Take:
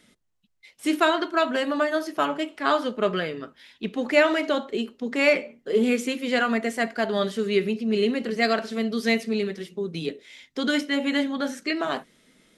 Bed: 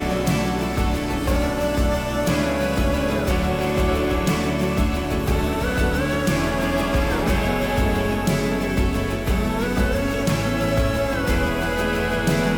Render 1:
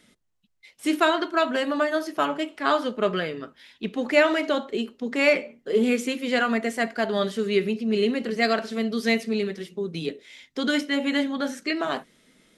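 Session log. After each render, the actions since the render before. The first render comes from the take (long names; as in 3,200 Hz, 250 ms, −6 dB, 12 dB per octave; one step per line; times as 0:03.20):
no processing that can be heard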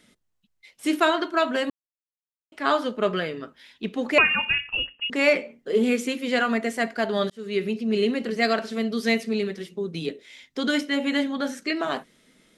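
0:01.70–0:02.52: silence
0:04.18–0:05.10: voice inversion scrambler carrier 3,100 Hz
0:07.30–0:07.87: fade in equal-power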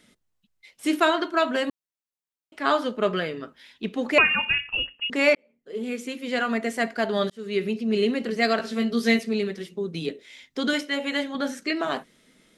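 0:05.35–0:06.78: fade in
0:08.58–0:09.19: double-tracking delay 17 ms −4.5 dB
0:10.73–0:11.35: parametric band 230 Hz −11 dB 0.59 octaves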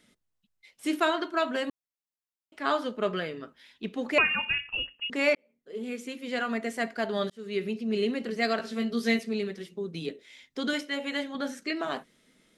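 level −5 dB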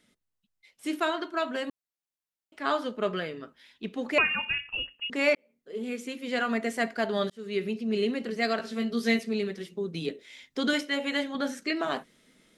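speech leveller within 4 dB 2 s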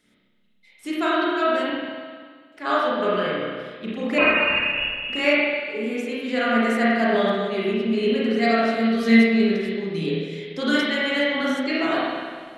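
spring reverb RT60 1.7 s, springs 31/48 ms, chirp 20 ms, DRR −7.5 dB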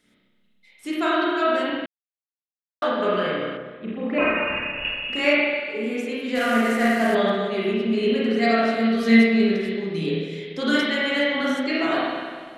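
0:01.86–0:02.82: silence
0:03.57–0:04.85: high-frequency loss of the air 450 metres
0:06.35–0:07.15: variable-slope delta modulation 64 kbit/s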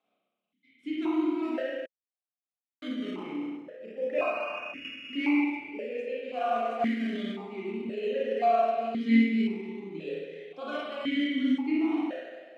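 in parallel at −8.5 dB: sample-and-hold swept by an LFO 15×, swing 60% 0.36 Hz
on the sum: formant filter that steps through the vowels 1.9 Hz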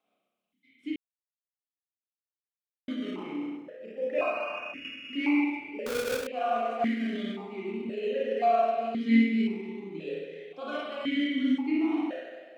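0:00.96–0:02.88: silence
0:05.86–0:06.27: each half-wave held at its own peak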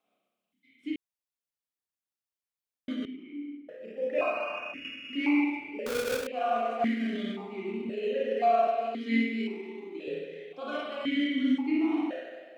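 0:03.05–0:03.69: formant filter i
0:08.67–0:10.08: Butterworth high-pass 250 Hz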